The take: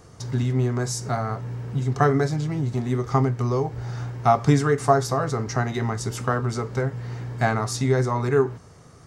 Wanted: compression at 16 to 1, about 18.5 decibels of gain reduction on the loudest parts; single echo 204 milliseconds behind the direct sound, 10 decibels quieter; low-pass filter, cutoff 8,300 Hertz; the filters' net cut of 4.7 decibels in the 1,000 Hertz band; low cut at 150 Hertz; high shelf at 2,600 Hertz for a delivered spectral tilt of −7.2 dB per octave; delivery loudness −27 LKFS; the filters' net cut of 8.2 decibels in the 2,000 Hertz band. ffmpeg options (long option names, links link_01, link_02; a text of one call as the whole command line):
ffmpeg -i in.wav -af "highpass=150,lowpass=8300,equalizer=frequency=1000:width_type=o:gain=-4.5,equalizer=frequency=2000:width_type=o:gain=-6,highshelf=frequency=2600:gain=-8,acompressor=threshold=-34dB:ratio=16,aecho=1:1:204:0.316,volume=12dB" out.wav